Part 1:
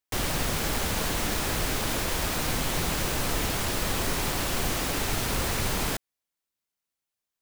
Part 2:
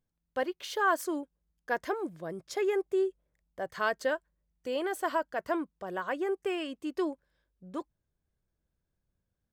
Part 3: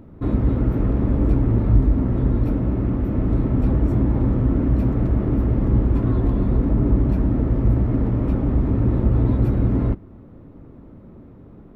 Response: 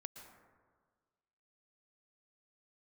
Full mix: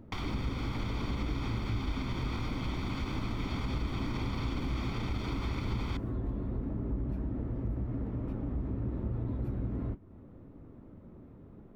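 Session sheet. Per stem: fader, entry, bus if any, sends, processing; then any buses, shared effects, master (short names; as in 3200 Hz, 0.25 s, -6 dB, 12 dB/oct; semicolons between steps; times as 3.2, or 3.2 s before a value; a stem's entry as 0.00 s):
-1.5 dB, 0.00 s, bus A, send -24 dB, comb 0.9 ms, depth 75%
off
-4.0 dB, 0.00 s, no bus, no send, flange 1.2 Hz, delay 8.2 ms, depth 8.4 ms, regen -57%
bus A: 0.0 dB, LPF 4500 Hz 24 dB/oct; limiter -23 dBFS, peak gain reduction 8.5 dB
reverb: on, RT60 1.6 s, pre-delay 0.108 s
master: compressor 2:1, threshold -37 dBFS, peak gain reduction 10.5 dB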